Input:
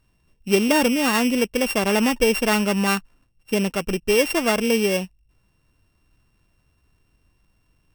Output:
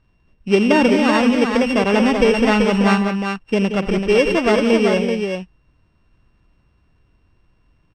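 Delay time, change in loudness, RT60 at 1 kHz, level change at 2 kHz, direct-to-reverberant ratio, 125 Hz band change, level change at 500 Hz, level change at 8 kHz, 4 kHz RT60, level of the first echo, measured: 86 ms, +4.0 dB, none, +3.0 dB, none, +6.5 dB, +5.5 dB, -8.0 dB, none, -13.5 dB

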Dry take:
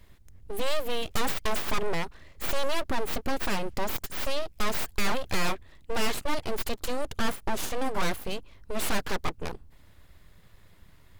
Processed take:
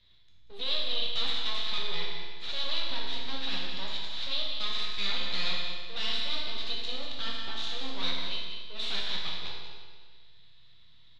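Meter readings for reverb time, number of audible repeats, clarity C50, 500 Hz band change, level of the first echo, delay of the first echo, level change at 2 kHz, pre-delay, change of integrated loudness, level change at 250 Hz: 1.6 s, 1, 0.0 dB, -12.5 dB, -9.0 dB, 0.188 s, -4.5 dB, 7 ms, -0.5 dB, -11.5 dB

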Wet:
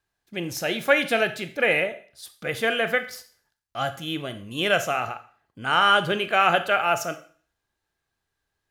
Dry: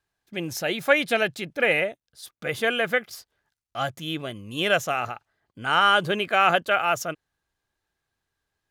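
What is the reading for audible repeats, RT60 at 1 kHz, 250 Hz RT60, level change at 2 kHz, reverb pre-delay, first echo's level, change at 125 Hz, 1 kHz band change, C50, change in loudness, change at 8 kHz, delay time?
none, 0.45 s, 0.45 s, +0.5 dB, 20 ms, none, 0.0 dB, +0.5 dB, 13.5 dB, +0.5 dB, +0.5 dB, none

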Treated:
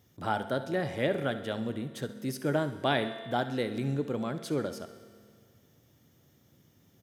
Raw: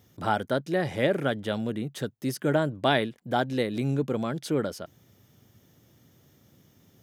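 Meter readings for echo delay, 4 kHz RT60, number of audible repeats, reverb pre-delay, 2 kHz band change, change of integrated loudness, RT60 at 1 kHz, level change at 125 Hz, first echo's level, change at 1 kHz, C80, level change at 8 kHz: 67 ms, 2.0 s, 2, 4 ms, -4.0 dB, -4.0 dB, 2.0 s, -4.0 dB, -14.5 dB, -4.0 dB, 12.5 dB, -4.0 dB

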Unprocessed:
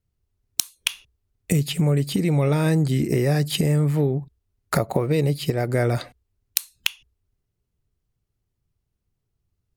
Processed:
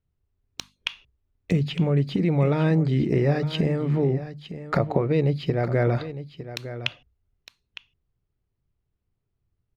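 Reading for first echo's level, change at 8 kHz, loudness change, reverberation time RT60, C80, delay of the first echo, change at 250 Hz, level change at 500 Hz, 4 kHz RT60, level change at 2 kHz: -13.0 dB, under -15 dB, -1.5 dB, none, none, 0.908 s, -1.0 dB, -0.5 dB, none, -2.5 dB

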